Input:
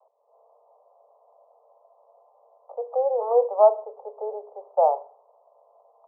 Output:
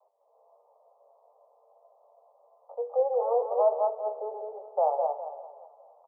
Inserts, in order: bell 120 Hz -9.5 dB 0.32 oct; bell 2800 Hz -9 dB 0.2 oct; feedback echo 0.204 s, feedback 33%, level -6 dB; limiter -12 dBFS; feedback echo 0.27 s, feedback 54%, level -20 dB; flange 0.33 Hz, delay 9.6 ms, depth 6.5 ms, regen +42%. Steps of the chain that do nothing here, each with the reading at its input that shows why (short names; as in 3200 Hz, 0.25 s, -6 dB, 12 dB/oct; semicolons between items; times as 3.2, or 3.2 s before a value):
bell 120 Hz: input band starts at 380 Hz; bell 2800 Hz: input band ends at 1100 Hz